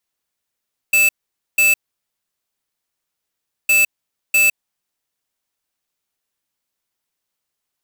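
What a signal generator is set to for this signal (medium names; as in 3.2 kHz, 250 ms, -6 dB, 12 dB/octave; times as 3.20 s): beep pattern square 2.63 kHz, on 0.16 s, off 0.49 s, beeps 2, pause 1.95 s, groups 2, -13 dBFS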